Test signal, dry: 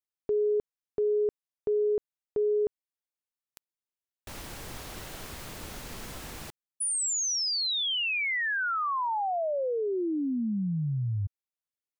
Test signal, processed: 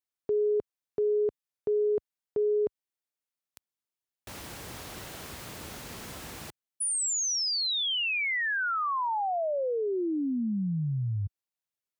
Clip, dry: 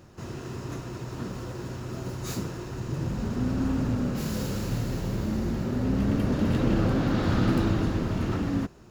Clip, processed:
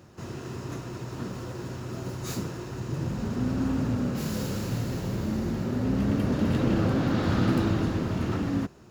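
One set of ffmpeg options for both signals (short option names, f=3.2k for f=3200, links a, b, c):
-af "highpass=65"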